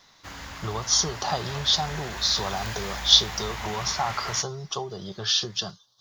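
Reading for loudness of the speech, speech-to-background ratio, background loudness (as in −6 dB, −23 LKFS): −24.5 LKFS, 11.0 dB, −35.5 LKFS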